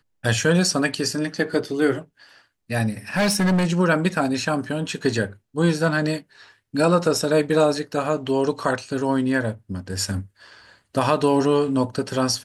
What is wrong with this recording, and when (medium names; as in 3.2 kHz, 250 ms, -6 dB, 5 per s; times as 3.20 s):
3.15–3.66 s: clipped -16 dBFS